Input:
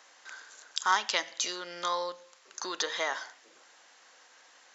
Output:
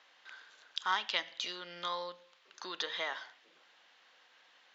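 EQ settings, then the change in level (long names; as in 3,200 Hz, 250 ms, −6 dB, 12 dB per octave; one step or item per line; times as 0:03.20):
low-pass with resonance 3,400 Hz, resonance Q 2
parametric band 170 Hz +7.5 dB 0.4 octaves
−7.5 dB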